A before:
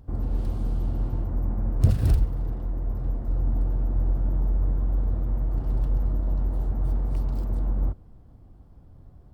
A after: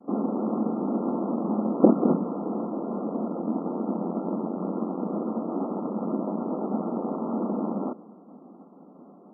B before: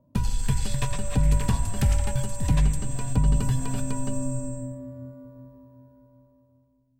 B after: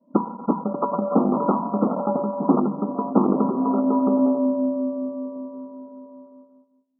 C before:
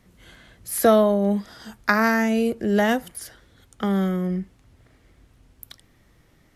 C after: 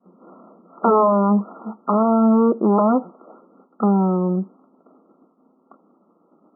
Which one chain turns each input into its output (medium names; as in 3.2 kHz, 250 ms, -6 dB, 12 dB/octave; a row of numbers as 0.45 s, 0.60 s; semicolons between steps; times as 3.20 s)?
Chebyshev shaper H 3 -8 dB, 7 -11 dB, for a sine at -4.5 dBFS; brick-wall FIR band-pass 180–1400 Hz; expander -52 dBFS; peak normalisation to -3 dBFS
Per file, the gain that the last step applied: +7.5 dB, +8.5 dB, +3.5 dB